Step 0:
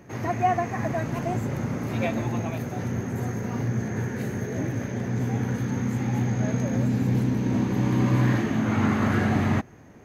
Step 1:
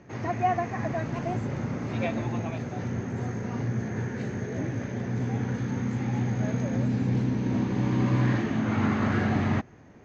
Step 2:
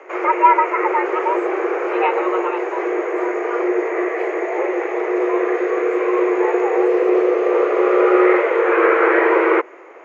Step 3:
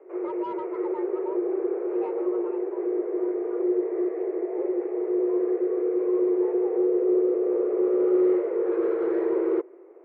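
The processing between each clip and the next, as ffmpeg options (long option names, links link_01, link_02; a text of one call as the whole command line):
ffmpeg -i in.wav -af "lowpass=frequency=6100:width=0.5412,lowpass=frequency=6100:width=1.3066,volume=-2.5dB" out.wav
ffmpeg -i in.wav -filter_complex "[0:a]equalizer=frequency=125:width_type=o:width=1:gain=5,equalizer=frequency=250:width_type=o:width=1:gain=4,equalizer=frequency=500:width_type=o:width=1:gain=4,equalizer=frequency=1000:width_type=o:width=1:gain=11,equalizer=frequency=2000:width_type=o:width=1:gain=10,equalizer=frequency=4000:width_type=o:width=1:gain=-7,acrossover=split=2700[link_01][link_02];[link_02]acompressor=threshold=-50dB:ratio=4:attack=1:release=60[link_03];[link_01][link_03]amix=inputs=2:normalize=0,afreqshift=240,volume=4dB" out.wav
ffmpeg -i in.wav -af "asoftclip=type=tanh:threshold=-11dB,bandpass=frequency=370:width_type=q:width=3.2:csg=0,volume=-2.5dB" out.wav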